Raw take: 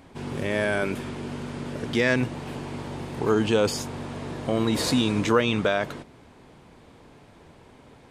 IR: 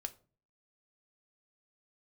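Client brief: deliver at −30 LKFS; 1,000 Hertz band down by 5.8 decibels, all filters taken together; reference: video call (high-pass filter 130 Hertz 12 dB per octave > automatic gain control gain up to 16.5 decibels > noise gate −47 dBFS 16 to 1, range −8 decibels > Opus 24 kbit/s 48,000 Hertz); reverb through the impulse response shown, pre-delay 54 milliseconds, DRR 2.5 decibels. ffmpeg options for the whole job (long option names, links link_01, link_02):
-filter_complex "[0:a]equalizer=frequency=1000:width_type=o:gain=-8,asplit=2[link_01][link_02];[1:a]atrim=start_sample=2205,adelay=54[link_03];[link_02][link_03]afir=irnorm=-1:irlink=0,volume=0dB[link_04];[link_01][link_04]amix=inputs=2:normalize=0,highpass=130,dynaudnorm=maxgain=16.5dB,agate=range=-8dB:threshold=-47dB:ratio=16,volume=-4dB" -ar 48000 -c:a libopus -b:a 24k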